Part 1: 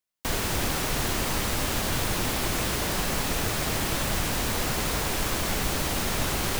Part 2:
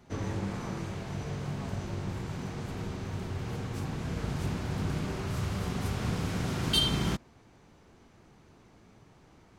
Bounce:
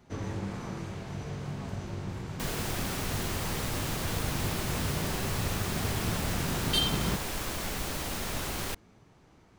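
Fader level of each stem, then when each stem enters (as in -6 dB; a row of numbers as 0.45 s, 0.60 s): -7.0 dB, -1.5 dB; 2.15 s, 0.00 s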